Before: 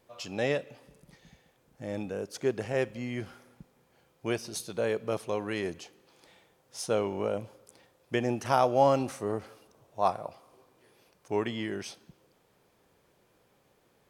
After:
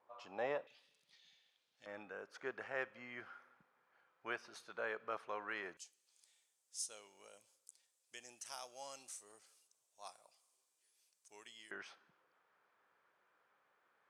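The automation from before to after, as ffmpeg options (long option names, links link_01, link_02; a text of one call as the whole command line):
ffmpeg -i in.wav -af "asetnsamples=nb_out_samples=441:pad=0,asendcmd='0.67 bandpass f 3700;1.86 bandpass f 1400;5.77 bandpass f 7900;11.71 bandpass f 1400',bandpass=frequency=990:width_type=q:width=2.3:csg=0" out.wav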